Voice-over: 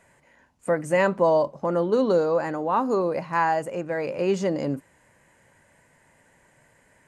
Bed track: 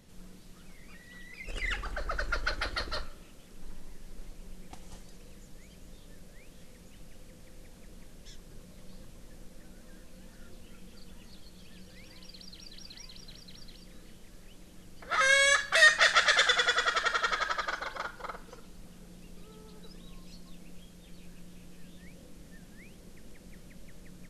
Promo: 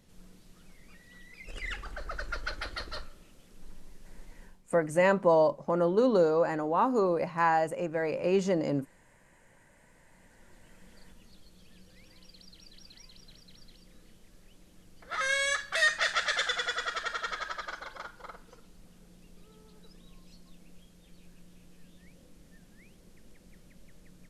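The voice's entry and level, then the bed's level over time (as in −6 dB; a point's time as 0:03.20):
4.05 s, −3.0 dB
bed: 0:04.44 −4 dB
0:04.64 −18.5 dB
0:09.52 −18.5 dB
0:10.92 −5.5 dB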